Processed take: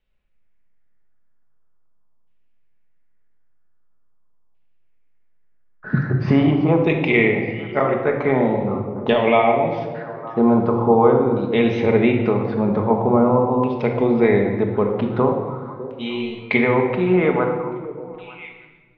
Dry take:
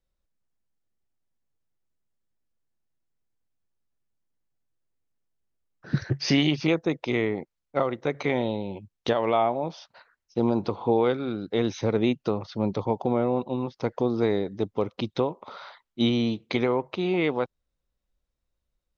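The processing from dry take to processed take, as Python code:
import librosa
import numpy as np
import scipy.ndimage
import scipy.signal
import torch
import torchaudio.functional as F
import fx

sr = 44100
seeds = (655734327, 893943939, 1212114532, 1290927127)

y = fx.comb_fb(x, sr, f0_hz=91.0, decay_s=0.51, harmonics='all', damping=0.0, mix_pct=90, at=(15.37, 16.46))
y = fx.echo_stepped(y, sr, ms=302, hz=150.0, octaves=1.4, feedback_pct=70, wet_db=-10.0)
y = fx.dynamic_eq(y, sr, hz=1400.0, q=2.2, threshold_db=-48.0, ratio=4.0, max_db=-5)
y = fx.filter_lfo_lowpass(y, sr, shape='saw_down', hz=0.44, low_hz=980.0, high_hz=2800.0, q=3.2)
y = fx.room_shoebox(y, sr, seeds[0], volume_m3=1100.0, walls='mixed', distance_m=1.4)
y = y * 10.0 ** (4.5 / 20.0)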